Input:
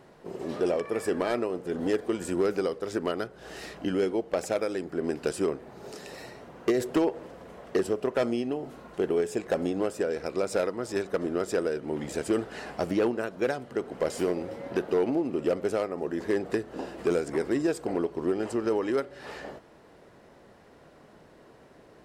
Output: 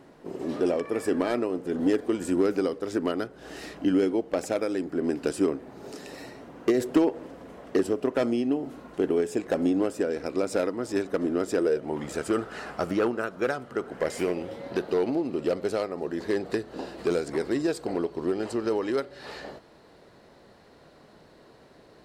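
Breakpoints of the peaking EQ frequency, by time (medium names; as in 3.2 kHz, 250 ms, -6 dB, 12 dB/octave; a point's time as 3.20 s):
peaking EQ +9 dB 0.37 oct
11.56 s 280 Hz
12.07 s 1.3 kHz
13.81 s 1.3 kHz
14.68 s 4.2 kHz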